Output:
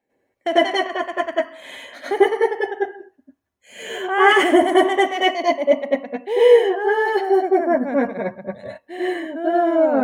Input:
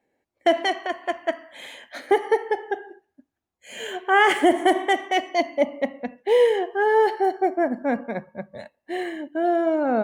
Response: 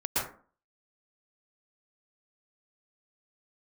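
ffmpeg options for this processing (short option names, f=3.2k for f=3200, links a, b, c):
-filter_complex "[0:a]asettb=1/sr,asplit=3[a][b][c];[a]atrim=end=5.134[d];[b]atrim=start=5.13:end=7.35,asetpts=PTS-STARTPTS,afade=t=in:d=0.004:c=qsin,afade=t=out:st=2.216:d=0.004:c=qsin,highpass=210[e];[c]atrim=start=7.346[f];[d][e]acrossfade=d=0.004:c1=hsin:c2=qsin[g];[g][f]acrossfade=d=0.004:c1=qsin:c2=hsin[h];[1:a]atrim=start_sample=2205,atrim=end_sample=6174,asetrate=52920,aresample=44100[i];[h][i]afir=irnorm=-1:irlink=0,volume=-1.5dB"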